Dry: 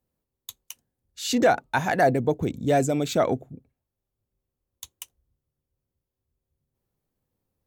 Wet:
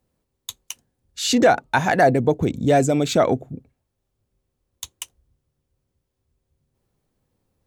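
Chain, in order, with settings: bell 15000 Hz -13 dB 0.37 oct; in parallel at 0 dB: compressor, threshold -30 dBFS, peak gain reduction 14.5 dB; on the sum: gain +2.5 dB

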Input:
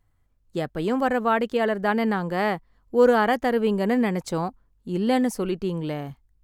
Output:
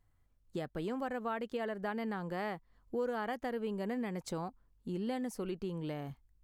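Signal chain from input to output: compressor 3:1, threshold -32 dBFS, peak gain reduction 14.5 dB; gain -5 dB

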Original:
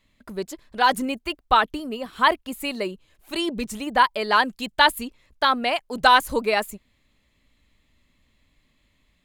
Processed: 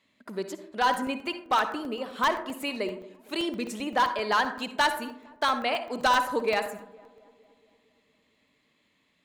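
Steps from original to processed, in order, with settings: HPF 210 Hz 12 dB/oct; high shelf 9100 Hz -9.5 dB; in parallel at +0.5 dB: compressor, threshold -31 dBFS, peak gain reduction 18.5 dB; on the sum: hard clip -11 dBFS, distortion -15 dB; darkening echo 0.23 s, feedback 65%, low-pass 1300 Hz, level -21.5 dB; on a send at -9 dB: reverb RT60 0.55 s, pre-delay 47 ms; on the sum: crackling interface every 0.13 s, samples 64, zero, from 0.94; gain -6.5 dB

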